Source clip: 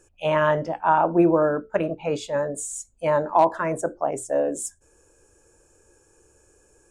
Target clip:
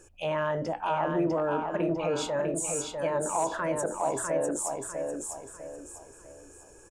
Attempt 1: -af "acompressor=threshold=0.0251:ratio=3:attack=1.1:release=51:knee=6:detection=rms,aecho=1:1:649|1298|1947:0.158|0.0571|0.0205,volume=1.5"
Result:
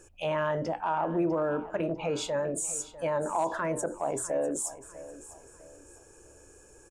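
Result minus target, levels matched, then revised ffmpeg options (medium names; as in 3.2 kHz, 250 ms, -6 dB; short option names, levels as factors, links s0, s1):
echo-to-direct -11.5 dB
-af "acompressor=threshold=0.0251:ratio=3:attack=1.1:release=51:knee=6:detection=rms,aecho=1:1:649|1298|1947|2596|3245:0.596|0.214|0.0772|0.0278|0.01,volume=1.5"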